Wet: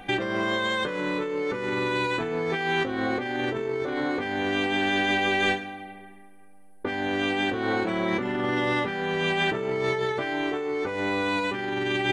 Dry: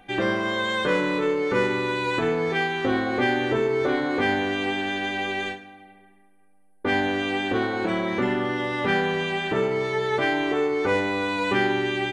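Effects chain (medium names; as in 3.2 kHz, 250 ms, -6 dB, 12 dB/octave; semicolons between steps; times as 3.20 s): compressor with a negative ratio -30 dBFS, ratio -1; trim +3 dB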